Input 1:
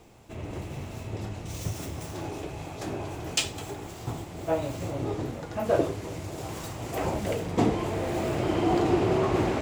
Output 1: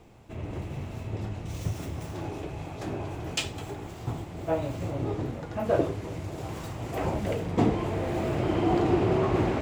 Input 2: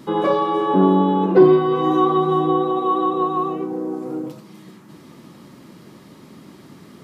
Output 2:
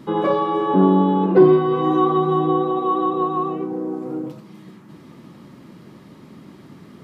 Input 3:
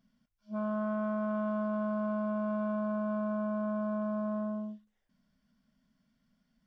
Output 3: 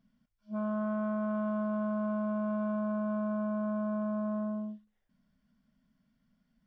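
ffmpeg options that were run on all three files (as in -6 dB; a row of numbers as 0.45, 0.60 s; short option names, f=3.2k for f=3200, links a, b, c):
-af "bass=f=250:g=3,treble=f=4k:g=-6,volume=-1dB"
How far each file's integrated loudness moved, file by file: -0.5, -0.5, +0.5 LU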